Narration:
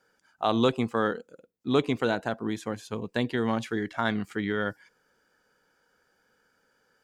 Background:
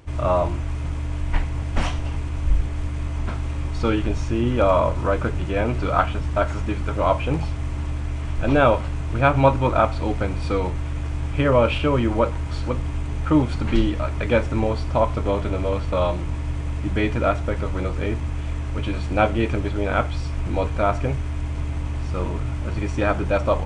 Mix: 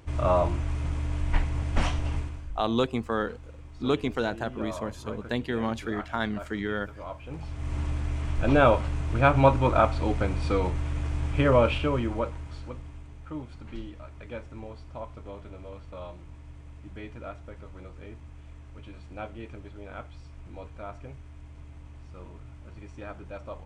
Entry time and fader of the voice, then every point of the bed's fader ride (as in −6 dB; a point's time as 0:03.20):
2.15 s, −2.0 dB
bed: 0:02.18 −3 dB
0:02.52 −19.5 dB
0:07.21 −19.5 dB
0:07.75 −3 dB
0:11.55 −3 dB
0:13.19 −19.5 dB